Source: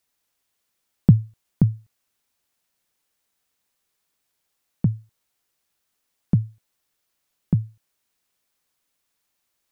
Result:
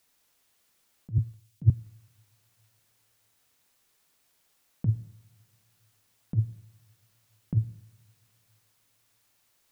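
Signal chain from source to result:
compressor whose output falls as the input rises −22 dBFS, ratio −0.5
coupled-rooms reverb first 0.77 s, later 2.8 s, from −22 dB, DRR 11 dB
0:01.18–0:01.70: multiband upward and downward expander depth 100%

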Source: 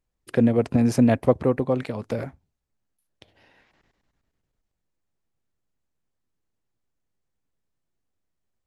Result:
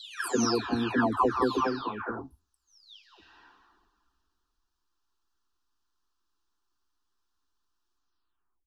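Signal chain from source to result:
every frequency bin delayed by itself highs early, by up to 677 ms
flat-topped bell 2,400 Hz +14 dB 2.9 octaves
phaser with its sweep stopped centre 570 Hz, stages 6

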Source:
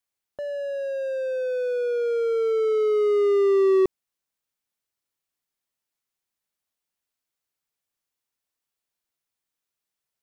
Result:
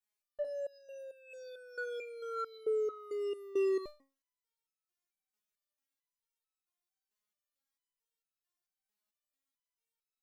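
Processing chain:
step-sequenced resonator 4.5 Hz 210–1,300 Hz
level +7.5 dB

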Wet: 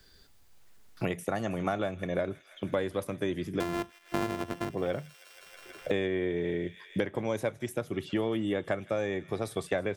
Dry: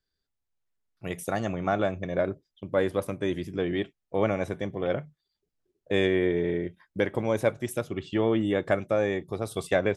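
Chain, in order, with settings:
0:03.60–0:04.70: samples sorted by size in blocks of 128 samples
delay with a high-pass on its return 160 ms, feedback 73%, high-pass 1,900 Hz, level −19 dB
multiband upward and downward compressor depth 100%
level −5.5 dB

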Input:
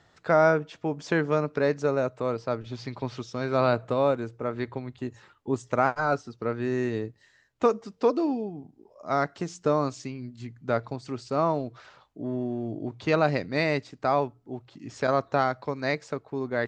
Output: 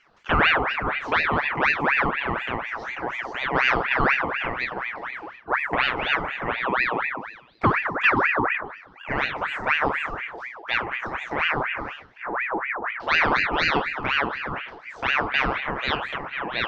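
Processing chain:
peak hold with a decay on every bin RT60 0.42 s
high-shelf EQ 6,400 Hz +4 dB
hum removal 151.7 Hz, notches 28
phaser swept by the level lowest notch 260 Hz, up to 1,200 Hz, full sweep at −20 dBFS
high-frequency loss of the air 340 metres
echo through a band-pass that steps 102 ms, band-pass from 180 Hz, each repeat 0.7 octaves, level −2 dB
ring modulator whose carrier an LFO sweeps 1,400 Hz, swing 60%, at 4.1 Hz
level +8 dB

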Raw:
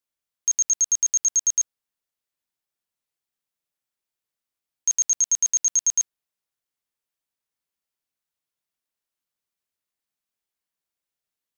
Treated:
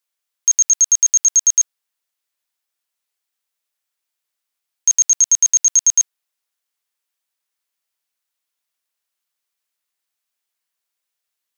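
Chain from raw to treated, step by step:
high-pass filter 920 Hz 6 dB per octave
level +7.5 dB

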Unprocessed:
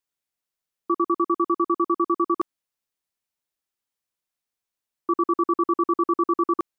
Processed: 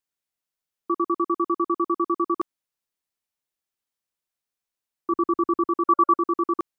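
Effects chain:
0:05.12–0:05.65: low-shelf EQ 180 Hz +9.5 dB
0:05.88–0:06.15: gain on a spectral selection 570–1,400 Hz +8 dB
level −1.5 dB

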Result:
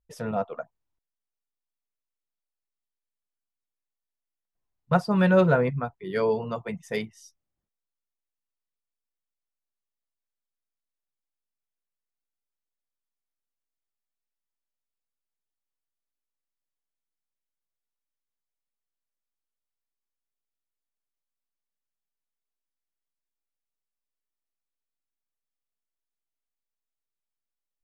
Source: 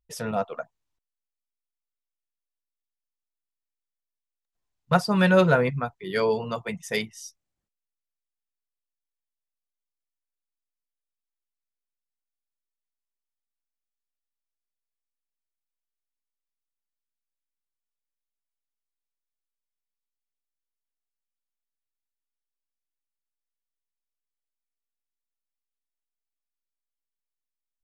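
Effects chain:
high-shelf EQ 2,100 Hz −11 dB

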